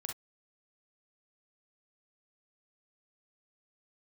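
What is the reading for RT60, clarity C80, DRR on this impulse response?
non-exponential decay, 57.0 dB, 1.0 dB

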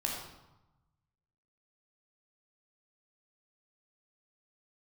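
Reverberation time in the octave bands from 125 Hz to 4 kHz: 1.6, 1.2, 0.90, 1.1, 0.80, 0.70 seconds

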